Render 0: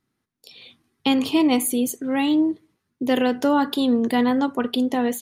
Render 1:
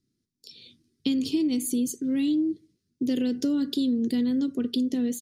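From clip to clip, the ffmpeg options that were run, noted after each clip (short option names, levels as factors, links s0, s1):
-af "firequalizer=gain_entry='entry(340,0);entry(840,-29);entry(1400,-17);entry(4900,3);entry(12000,-8)':delay=0.05:min_phase=1,acompressor=threshold=0.0794:ratio=6"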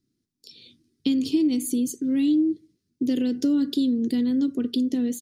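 -af "equalizer=f=300:t=o:w=0.5:g=4"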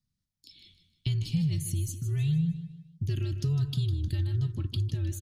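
-af "afreqshift=-150,aecho=1:1:154|308|462|616:0.266|0.104|0.0405|0.0158,volume=0.501"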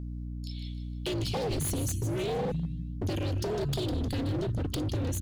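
-af "aeval=exprs='val(0)+0.00891*(sin(2*PI*60*n/s)+sin(2*PI*2*60*n/s)/2+sin(2*PI*3*60*n/s)/3+sin(2*PI*4*60*n/s)/4+sin(2*PI*5*60*n/s)/5)':c=same,aeval=exprs='0.0299*(abs(mod(val(0)/0.0299+3,4)-2)-1)':c=same,volume=1.88"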